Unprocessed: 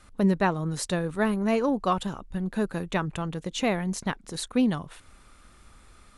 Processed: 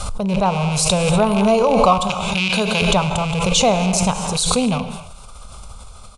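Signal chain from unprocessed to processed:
loose part that buzzes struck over −34 dBFS, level −24 dBFS
0:02.09–0:02.82: meter weighting curve D
automatic gain control gain up to 12 dB
phaser with its sweep stopped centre 750 Hz, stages 4
reverb whose tail is shaped and stops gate 290 ms flat, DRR 8.5 dB
downsampling to 22,050 Hz
background raised ahead of every attack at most 23 dB per second
level +2.5 dB

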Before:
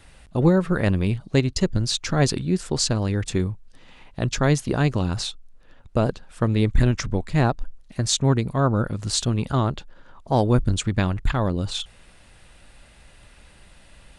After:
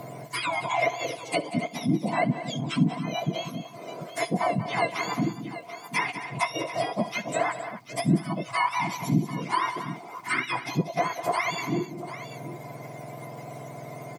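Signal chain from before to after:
frequency axis turned over on the octave scale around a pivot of 1,100 Hz
treble cut that deepens with the level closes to 890 Hz, closed at −18.5 dBFS
in parallel at +0.5 dB: downward compressor, threshold −38 dBFS, peak gain reduction 25 dB
on the sum: surface crackle 350 per second −51 dBFS
hollow resonant body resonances 690/1,000/2,100 Hz, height 16 dB, ringing for 40 ms
on a send: multi-tap delay 66/187/265/738 ms −19/−13/−17/−17.5 dB
on the sum: multiband upward and downward compressor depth 40%
level −5 dB

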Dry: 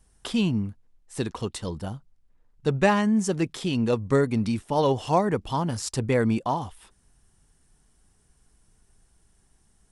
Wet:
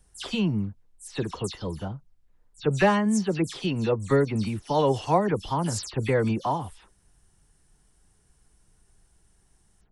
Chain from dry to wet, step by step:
every frequency bin delayed by itself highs early, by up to 103 ms

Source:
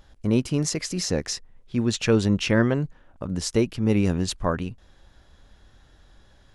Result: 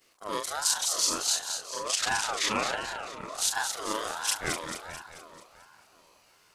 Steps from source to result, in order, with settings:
every overlapping window played backwards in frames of 96 ms
RIAA equalisation recording
echo with a time of its own for lows and highs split 440 Hz, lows 368 ms, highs 219 ms, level −7 dB
ring modulator whose carrier an LFO sweeps 1,000 Hz, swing 25%, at 1.4 Hz

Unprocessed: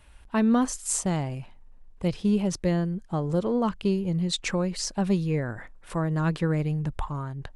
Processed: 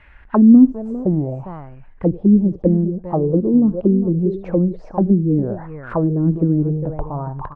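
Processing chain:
multi-tap delay 68/402 ms −18.5/−12.5 dB
envelope-controlled low-pass 280–2,100 Hz down, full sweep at −21 dBFS
level +5 dB

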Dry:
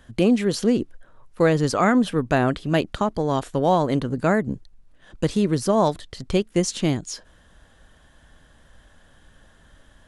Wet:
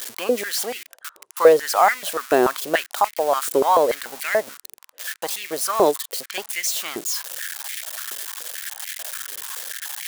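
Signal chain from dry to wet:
spike at every zero crossing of −19 dBFS
high-pass on a step sequencer 6.9 Hz 390–2,100 Hz
level −1 dB

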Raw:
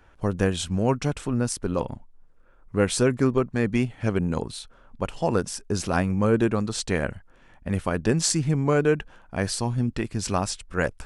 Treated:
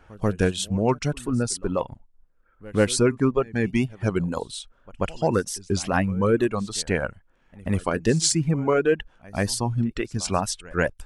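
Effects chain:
in parallel at −9.5 dB: gain into a clipping stage and back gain 16 dB
on the sum: tape wow and flutter 70 cents
reverb reduction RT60 1.8 s
backwards echo 137 ms −21.5 dB

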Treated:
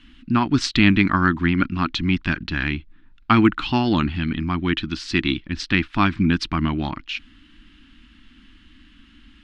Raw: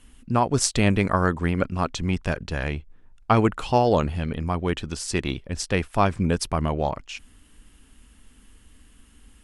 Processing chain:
drawn EQ curve 120 Hz 0 dB, 320 Hz +10 dB, 480 Hz −19 dB, 810 Hz −4 dB, 1,400 Hz +7 dB, 4,000 Hz +9 dB, 10,000 Hz −24 dB

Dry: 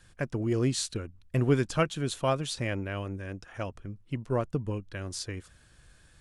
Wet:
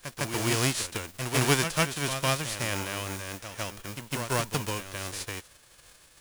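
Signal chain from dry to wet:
spectral envelope flattened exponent 0.3
backwards echo 155 ms −7.5 dB

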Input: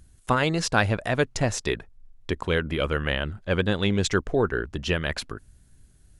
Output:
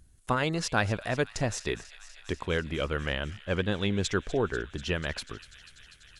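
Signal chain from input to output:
delay with a high-pass on its return 245 ms, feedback 83%, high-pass 2,300 Hz, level −15 dB
level −5 dB

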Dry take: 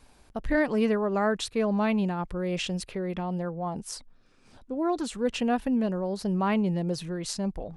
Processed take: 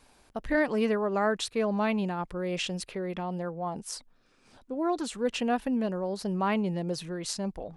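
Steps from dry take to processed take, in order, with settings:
low-shelf EQ 180 Hz −8 dB

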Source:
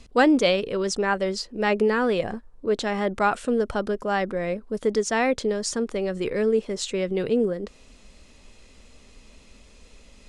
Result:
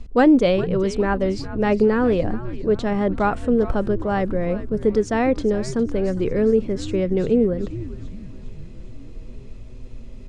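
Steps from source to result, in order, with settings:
spectral tilt −3 dB per octave
echo with shifted repeats 408 ms, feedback 54%, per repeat −130 Hz, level −14 dB

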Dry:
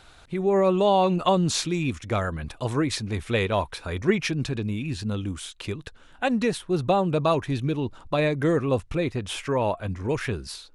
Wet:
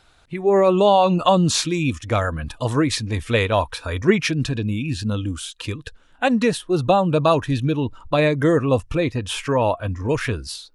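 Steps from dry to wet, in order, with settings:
noise reduction from a noise print of the clip's start 10 dB
level +5.5 dB

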